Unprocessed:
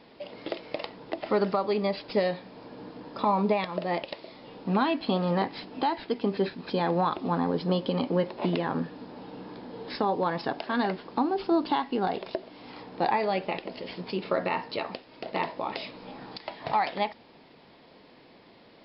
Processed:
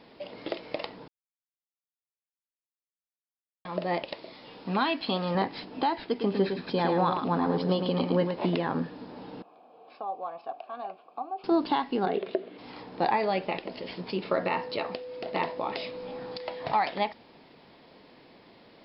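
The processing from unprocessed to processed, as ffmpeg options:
-filter_complex "[0:a]asettb=1/sr,asplit=3[a][b][c];[a]atrim=end=4.334[d];[b]atrim=start=4.33:end=5.35,asetpts=PTS-STARTPTS,afade=t=in:d=0.004:c=qsin,afade=t=out:st=1.016:d=0.004:c=qsin,tiltshelf=f=1.1k:g=-4.5[e];[c]atrim=start=5.346[f];[d][e]acrossfade=d=0.004:c1=hsin:c2=qsin[g];[g][f]acrossfade=d=0.004:c1=qsin:c2=hsin,asettb=1/sr,asplit=3[h][i][j];[h]atrim=end=6.094[k];[i]atrim=start=6.09:end=8.49,asetpts=PTS-STARTPTS,afade=t=in:d=0.004:c=qsin,afade=t=out:st=2.396:d=0.004:c=qsin,aecho=1:1:108:0.501,atrim=end_sample=105840[l];[j]atrim=start=8.486[m];[k][l]acrossfade=d=0.004:c1=hsin:c2=qsin[n];[n][m]acrossfade=d=0.004:c1=qsin:c2=hsin,asettb=1/sr,asplit=3[o][p][q];[o]atrim=end=9.424[r];[p]atrim=start=9.42:end=11.44,asetpts=PTS-STARTPTS,afade=t=in:d=0.004:c=qsin,afade=t=out:st=2.016:d=0.004:c=qsin,asplit=3[s][t][u];[s]bandpass=f=730:t=q:w=8,volume=0dB[v];[t]bandpass=f=1.09k:t=q:w=8,volume=-6dB[w];[u]bandpass=f=2.44k:t=q:w=8,volume=-9dB[x];[v][w][x]amix=inputs=3:normalize=0[y];[q]atrim=start=11.436[z];[r][y]acrossfade=d=0.004:c1=hsin:c2=qsin[aa];[aa][z]acrossfade=d=0.004:c1=qsin:c2=hsin,asplit=3[ab][ac][ad];[ab]afade=t=out:st=12.05:d=0.02[ae];[ac]highpass=150,equalizer=f=200:t=q:w=4:g=4,equalizer=f=410:t=q:w=4:g=10,equalizer=f=910:t=q:w=4:g=-9,lowpass=f=3.6k:w=0.5412,lowpass=f=3.6k:w=1.3066,afade=t=in:st=12.05:d=0.02,afade=t=out:st=12.57:d=0.02[af];[ad]afade=t=in:st=12.57:d=0.02[ag];[ae][af][ag]amix=inputs=3:normalize=0,asettb=1/sr,asplit=3[ah][ai][aj];[ah]atrim=end=14.434[ak];[ai]atrim=start=14.43:end=16.67,asetpts=PTS-STARTPTS,afade=t=in:d=0.004:c=qsin,afade=t=out:st=2.236:d=0.004:c=qsin,aeval=exprs='val(0)+0.0141*sin(2*PI*500*n/s)':c=same[al];[aj]atrim=start=16.666[am];[ak][al]acrossfade=d=0.004:c1=hsin:c2=qsin[an];[an][am]acrossfade=d=0.004:c1=qsin:c2=hsin,asplit=3[ao][ap][aq];[ao]atrim=end=1.08,asetpts=PTS-STARTPTS,afade=t=out:st=1.076:d=0.004:c=hsin[ar];[ap]atrim=start=1.08:end=3.65,asetpts=PTS-STARTPTS,volume=0[as];[aq]atrim=start=3.65,asetpts=PTS-STARTPTS,afade=t=in:d=0.004:c=hsin[at];[ar][as][at]concat=n=3:v=0:a=1"

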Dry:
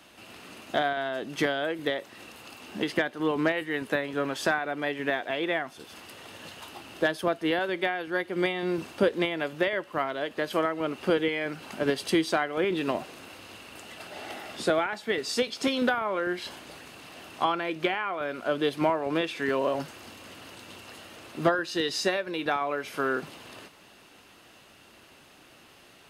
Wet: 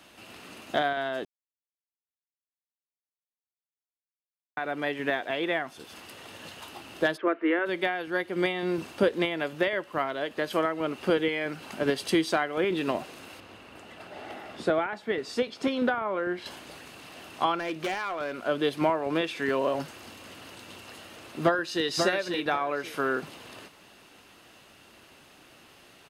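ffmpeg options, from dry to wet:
-filter_complex "[0:a]asplit=3[a][b][c];[a]afade=t=out:st=7.16:d=0.02[d];[b]highpass=f=290:w=0.5412,highpass=f=290:w=1.3066,equalizer=f=340:t=q:w=4:g=6,equalizer=f=770:t=q:w=4:g=-9,equalizer=f=1.3k:t=q:w=4:g=5,equalizer=f=2.1k:t=q:w=4:g=5,lowpass=f=2.3k:w=0.5412,lowpass=f=2.3k:w=1.3066,afade=t=in:st=7.16:d=0.02,afade=t=out:st=7.65:d=0.02[e];[c]afade=t=in:st=7.65:d=0.02[f];[d][e][f]amix=inputs=3:normalize=0,asettb=1/sr,asplit=3[g][h][i];[g]atrim=end=13.404[j];[h]atrim=start=13.4:end=16.46,asetpts=PTS-STARTPTS,afade=t=in:d=0.004:c=qsin,afade=t=out:st=3.056:d=0.004:c=qsin,highshelf=f=3.2k:g=-12[k];[i]atrim=start=16.456[l];[j][k]acrossfade=d=0.004:c1=hsin:c2=qsin[m];[m][l]acrossfade=d=0.004:c1=qsin:c2=hsin,asettb=1/sr,asplit=3[n][o][p];[n]atrim=end=17.554[q];[o]atrim=start=17.55:end=18.41,asetpts=PTS-STARTPTS,afade=t=in:d=0.004:c=qsin,afade=t=out:st=0.856:d=0.004:c=qsin,asoftclip=type=hard:threshold=-26.5dB[r];[p]atrim=start=18.406[s];[q][r]acrossfade=d=0.004:c1=hsin:c2=qsin[t];[t][s]acrossfade=d=0.004:c1=qsin:c2=hsin,asplit=2[u][v];[v]afade=t=in:st=21.43:d=0.01,afade=t=out:st=21.86:d=0.01,aecho=0:1:540|1080|1620:0.562341|0.112468|0.0224937[w];[u][w]amix=inputs=2:normalize=0,asplit=3[x][y][z];[x]atrim=end=1.25,asetpts=PTS-STARTPTS,afade=t=out:st=1.246:d=0.004:c=hsin[aa];[y]atrim=start=1.25:end=4.57,asetpts=PTS-STARTPTS,volume=0[ab];[z]atrim=start=4.57,asetpts=PTS-STARTPTS,afade=t=in:d=0.004:c=hsin[ac];[aa][ab][ac]concat=n=3:v=0:a=1"

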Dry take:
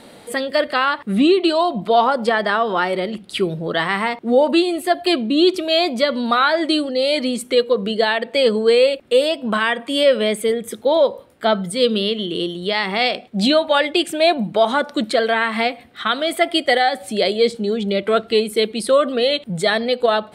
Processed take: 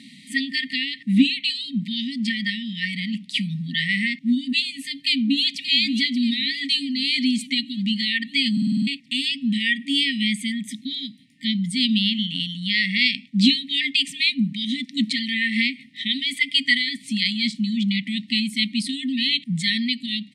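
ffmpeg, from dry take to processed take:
-filter_complex "[0:a]asplit=2[a][b];[b]afade=t=in:st=4.75:d=0.01,afade=t=out:st=5.65:d=0.01,aecho=0:1:580|1160|1740|2320|2900|3480|4060:0.298538|0.179123|0.107474|0.0644843|0.0386906|0.0232143|0.0139286[c];[a][c]amix=inputs=2:normalize=0,asplit=8[d][e][f][g][h][i][j][k];[d]atrim=end=8.572[l];[e]atrim=start=8.518:end=8.572[m];[f]atrim=start=8.518:end=8.572[n];[g]atrim=start=8.518:end=8.572[o];[h]atrim=start=8.518:end=8.572[p];[i]atrim=start=8.518:end=8.572[q];[j]atrim=start=8.518:end=8.572[r];[k]atrim=start=8.868[s];[l][m]acrossfade=d=0.004:c1=hsin:c2=hsin[t];[t][n]acrossfade=d=0.004:c1=hsin:c2=hsin[u];[u][o]acrossfade=d=0.004:c1=hsin:c2=hsin[v];[v][p]acrossfade=d=0.004:c1=hsin:c2=hsin[w];[w][q]acrossfade=d=0.004:c1=hsin:c2=hsin[x];[x][r]acrossfade=d=0.004:c1=hsin:c2=hsin[y];[y][s]acrossfade=d=0.004:c1=hsin:c2=hsin,lowpass=6.7k,afftfilt=real='re*(1-between(b*sr/4096,290,1800))':imag='im*(1-between(b*sr/4096,290,1800))':win_size=4096:overlap=0.75,highpass=f=150:w=0.5412,highpass=f=150:w=1.3066,volume=2dB"

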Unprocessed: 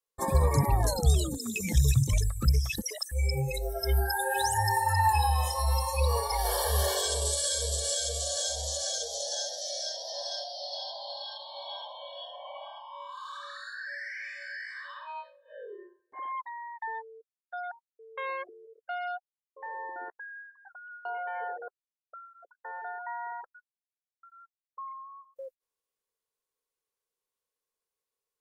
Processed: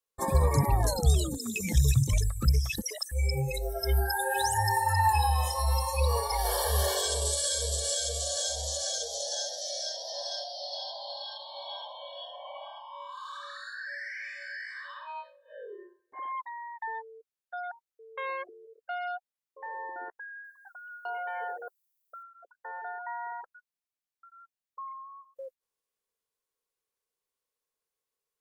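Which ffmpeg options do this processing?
-filter_complex "[0:a]asettb=1/sr,asplit=3[a][b][c];[a]atrim=end=20.444[d];[b]atrim=start=20.44:end=22.23,asetpts=PTS-STARTPTS,afade=t=in:d=0.004:c=qsin,afade=t=out:st=1.786:d=0.004:c=qsin,aemphasis=mode=production:type=75fm[e];[c]atrim=start=22.226[f];[d][e]acrossfade=d=0.004:c1=hsin:c2=qsin[g];[g][f]acrossfade=d=0.004:c1=qsin:c2=hsin"

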